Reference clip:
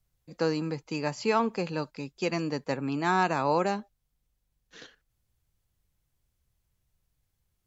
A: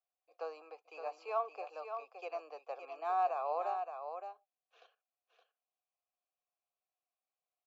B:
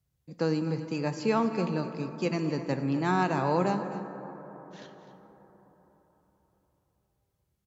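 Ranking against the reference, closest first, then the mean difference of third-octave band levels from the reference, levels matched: B, A; 5.0, 12.0 decibels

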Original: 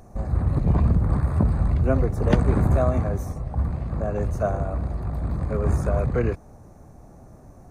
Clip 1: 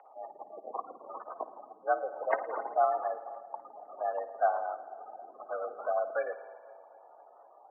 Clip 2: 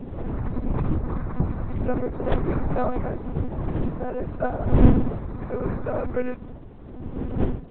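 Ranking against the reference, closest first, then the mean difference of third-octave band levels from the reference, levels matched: 2, 1; 6.0, 14.0 decibels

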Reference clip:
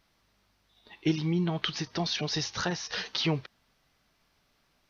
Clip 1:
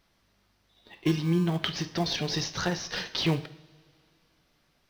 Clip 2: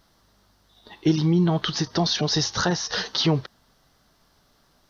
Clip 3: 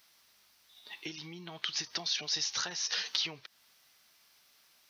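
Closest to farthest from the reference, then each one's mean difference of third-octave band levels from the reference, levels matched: 2, 1, 3; 1.5, 5.0, 7.0 decibels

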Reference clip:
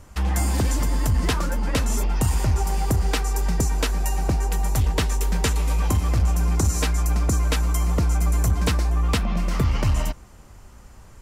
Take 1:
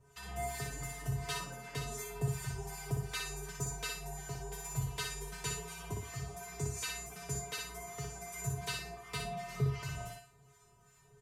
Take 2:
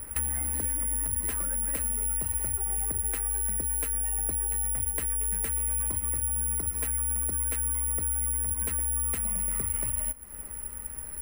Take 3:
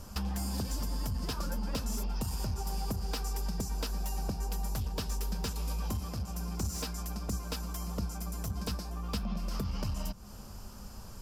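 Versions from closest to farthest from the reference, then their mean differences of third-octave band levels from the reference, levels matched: 3, 1, 2; 3.5, 6.0, 11.5 decibels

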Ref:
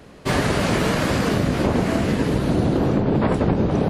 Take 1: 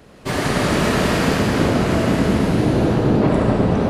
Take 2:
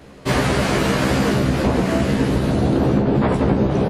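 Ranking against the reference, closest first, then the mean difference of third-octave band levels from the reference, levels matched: 2, 1; 1.0, 2.5 decibels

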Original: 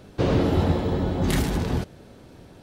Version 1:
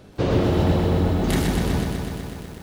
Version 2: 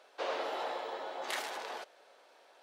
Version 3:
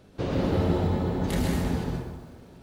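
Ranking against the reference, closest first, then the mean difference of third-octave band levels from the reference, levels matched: 3, 1, 2; 3.5, 5.5, 12.0 decibels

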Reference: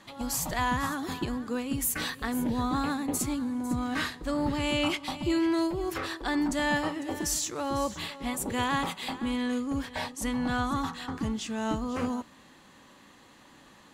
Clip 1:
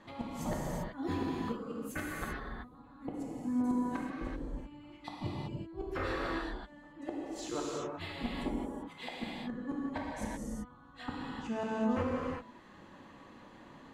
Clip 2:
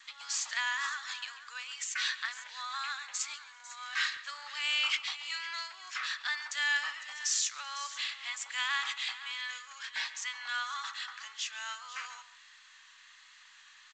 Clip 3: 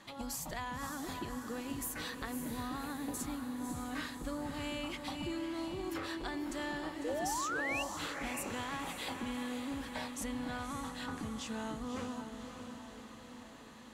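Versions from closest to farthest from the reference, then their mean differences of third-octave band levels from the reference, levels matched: 3, 1, 2; 6.0, 9.5, 16.0 decibels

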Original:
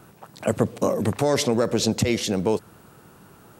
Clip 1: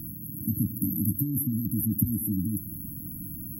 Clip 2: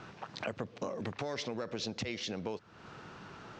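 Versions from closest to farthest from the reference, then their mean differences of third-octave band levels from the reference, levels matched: 2, 1; 9.0, 21.0 decibels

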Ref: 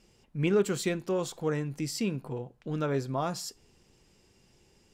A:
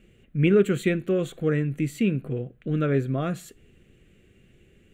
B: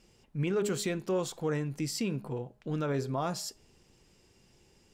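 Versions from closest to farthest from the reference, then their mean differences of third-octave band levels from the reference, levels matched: B, A; 1.5, 4.5 decibels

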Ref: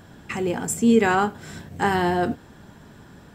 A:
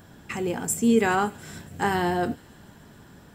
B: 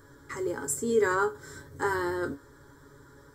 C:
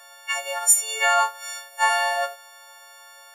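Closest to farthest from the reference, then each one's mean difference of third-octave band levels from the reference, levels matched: A, B, C; 1.5, 4.5, 15.0 decibels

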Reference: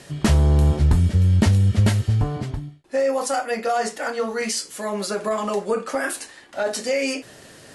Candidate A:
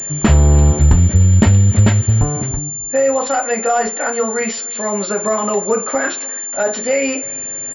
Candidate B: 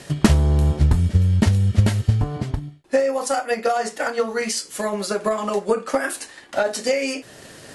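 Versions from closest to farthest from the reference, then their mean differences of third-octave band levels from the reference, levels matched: B, A; 1.5, 4.0 decibels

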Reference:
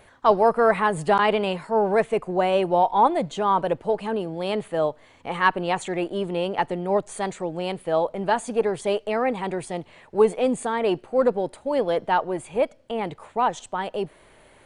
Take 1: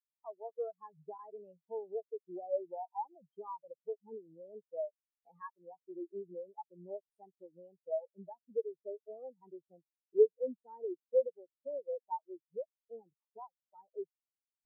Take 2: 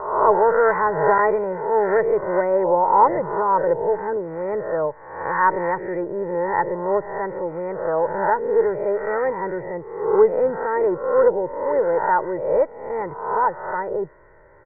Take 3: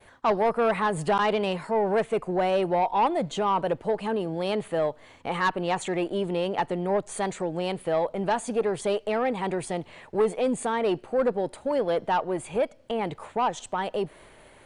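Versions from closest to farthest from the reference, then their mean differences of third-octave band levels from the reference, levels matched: 3, 2, 1; 2.5, 8.5, 17.0 decibels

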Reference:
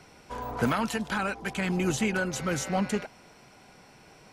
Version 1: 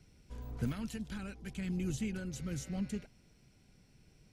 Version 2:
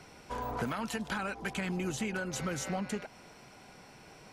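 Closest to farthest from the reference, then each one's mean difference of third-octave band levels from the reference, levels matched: 2, 1; 3.5, 5.5 decibels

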